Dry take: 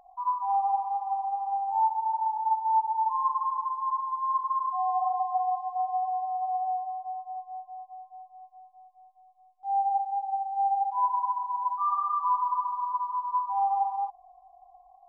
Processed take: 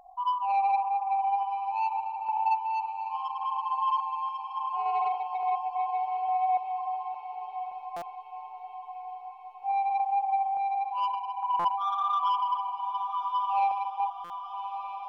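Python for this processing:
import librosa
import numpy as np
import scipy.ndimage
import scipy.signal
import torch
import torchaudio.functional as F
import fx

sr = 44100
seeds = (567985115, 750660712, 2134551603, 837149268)

p1 = 10.0 ** (-23.0 / 20.0) * np.tanh(x / 10.0 ** (-23.0 / 20.0))
p2 = fx.tremolo_random(p1, sr, seeds[0], hz=3.5, depth_pct=75)
p3 = p2 + fx.echo_diffused(p2, sr, ms=1259, feedback_pct=62, wet_db=-10, dry=0)
p4 = fx.buffer_glitch(p3, sr, at_s=(7.96, 11.59, 14.24), block=256, repeats=9)
y = F.gain(torch.from_numpy(p4), 4.5).numpy()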